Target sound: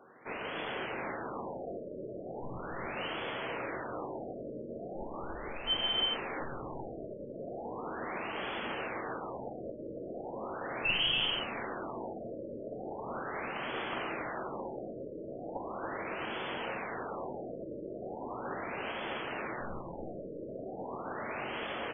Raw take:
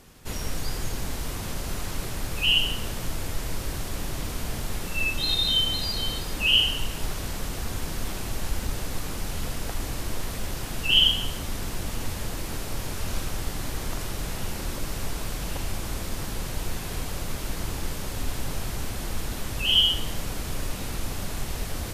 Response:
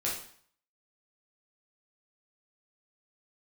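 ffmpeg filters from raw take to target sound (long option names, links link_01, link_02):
-filter_complex "[0:a]highpass=390,lowpass=7400,aeval=exprs='(mod(5.31*val(0)+1,2)-1)/5.31':channel_layout=same,aeval=exprs='(tanh(12.6*val(0)+0.45)-tanh(0.45))/12.6':channel_layout=same,asplit=2[link_01][link_02];[1:a]atrim=start_sample=2205[link_03];[link_02][link_03]afir=irnorm=-1:irlink=0,volume=-8.5dB[link_04];[link_01][link_04]amix=inputs=2:normalize=0,alimiter=limit=-20dB:level=0:latency=1:release=180,aecho=1:1:279:0.562,afftfilt=real='re*lt(b*sr/1024,630*pow(3500/630,0.5+0.5*sin(2*PI*0.38*pts/sr)))':imag='im*lt(b*sr/1024,630*pow(3500/630,0.5+0.5*sin(2*PI*0.38*pts/sr)))':win_size=1024:overlap=0.75"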